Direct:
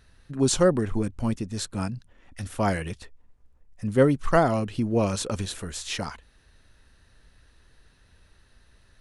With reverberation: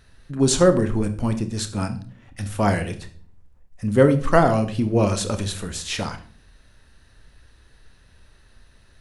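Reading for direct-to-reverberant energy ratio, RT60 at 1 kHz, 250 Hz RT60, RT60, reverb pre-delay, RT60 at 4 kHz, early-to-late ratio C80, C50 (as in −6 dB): 8.5 dB, 0.35 s, 0.75 s, 0.45 s, 29 ms, 0.35 s, 17.0 dB, 13.0 dB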